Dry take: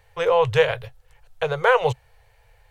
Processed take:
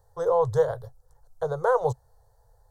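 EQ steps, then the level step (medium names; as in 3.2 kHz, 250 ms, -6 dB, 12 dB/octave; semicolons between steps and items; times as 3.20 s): Butterworth band-stop 2.5 kHz, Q 0.59; -3.5 dB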